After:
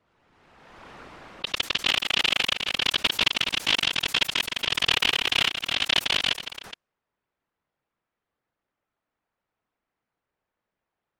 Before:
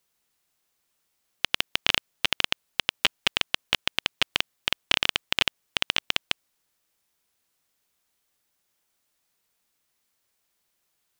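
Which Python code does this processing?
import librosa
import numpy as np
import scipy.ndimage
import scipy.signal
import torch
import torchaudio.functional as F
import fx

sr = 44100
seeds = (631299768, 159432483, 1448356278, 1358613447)

p1 = fx.env_lowpass(x, sr, base_hz=1500.0, full_db=-27.5)
p2 = fx.whisperise(p1, sr, seeds[0])
p3 = p2 + fx.echo_multitap(p2, sr, ms=(163, 304, 420), db=(-9.5, -19.5, -14.0), dry=0)
y = fx.pre_swell(p3, sr, db_per_s=31.0)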